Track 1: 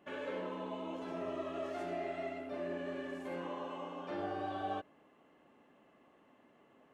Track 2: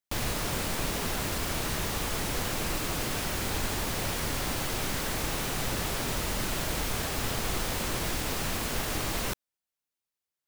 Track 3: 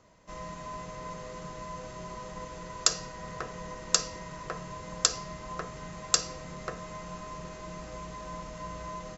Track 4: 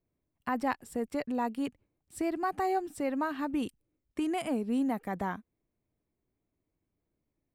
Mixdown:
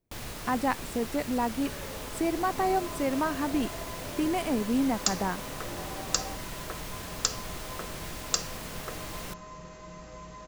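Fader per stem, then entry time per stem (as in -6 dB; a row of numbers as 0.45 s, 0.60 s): -3.5 dB, -8.5 dB, -3.5 dB, +3.0 dB; 1.55 s, 0.00 s, 2.20 s, 0.00 s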